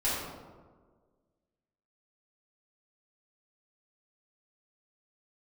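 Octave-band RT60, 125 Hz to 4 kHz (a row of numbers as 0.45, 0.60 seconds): 1.6, 1.8, 1.7, 1.4, 0.95, 0.70 seconds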